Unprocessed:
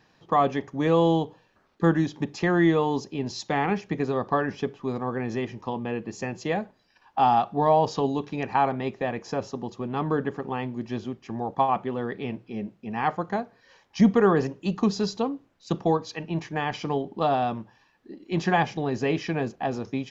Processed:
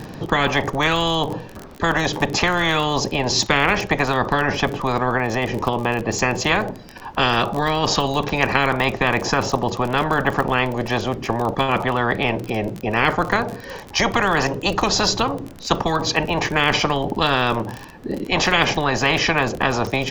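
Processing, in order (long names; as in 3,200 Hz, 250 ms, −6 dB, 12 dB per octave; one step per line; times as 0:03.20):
tilt shelving filter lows +7.5 dB, about 790 Hz
0:05.15–0:06.09: downward compressor, threshold −25 dBFS, peak gain reduction 6.5 dB
surface crackle 35 per second −47 dBFS
every bin compressed towards the loudest bin 10 to 1
level +1.5 dB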